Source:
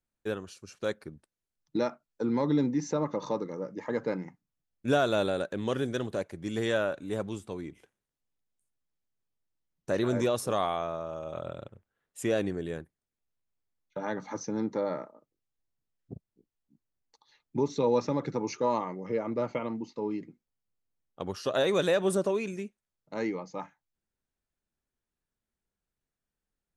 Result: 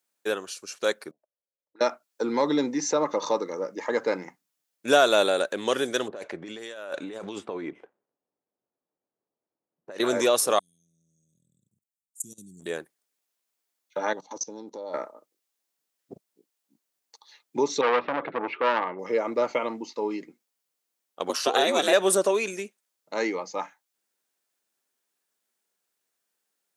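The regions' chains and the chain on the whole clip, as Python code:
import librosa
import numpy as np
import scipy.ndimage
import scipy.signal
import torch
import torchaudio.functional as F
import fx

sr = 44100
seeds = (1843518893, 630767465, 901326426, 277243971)

y = fx.chain(x, sr, fx.auto_wah(base_hz=530.0, top_hz=1600.0, q=7.0, full_db=-34.0, direction='up'),
    fx.peak_eq(hz=3700.0, db=-12.5, octaves=1.9), at=(1.11, 1.81))
y = fx.chain(y, sr, fx.env_lowpass(base_hz=610.0, full_db=-25.5),
    fx.over_compress(threshold_db=-40.0, ratio=-1.0), at=(6.08, 10.0))
y = fx.chain(y, sr, fx.ellip_bandstop(low_hz=180.0, high_hz=7300.0, order=3, stop_db=70),
    fx.peak_eq(hz=670.0, db=-2.5, octaves=0.91),
    fx.level_steps(step_db=21), at=(10.59, 12.66))
y = fx.chain(y, sr, fx.band_shelf(hz=1700.0, db=-14.0, octaves=1.1),
    fx.level_steps(step_db=21), at=(14.13, 14.94))
y = fx.chain(y, sr, fx.steep_lowpass(hz=3200.0, slope=48),
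    fx.transformer_sat(knee_hz=1200.0), at=(17.81, 18.99))
y = fx.chain(y, sr, fx.ring_mod(carrier_hz=150.0),
    fx.band_squash(depth_pct=70), at=(21.29, 21.93))
y = scipy.signal.sosfilt(scipy.signal.butter(2, 400.0, 'highpass', fs=sr, output='sos'), y)
y = fx.high_shelf(y, sr, hz=3700.0, db=7.5)
y = F.gain(torch.from_numpy(y), 7.5).numpy()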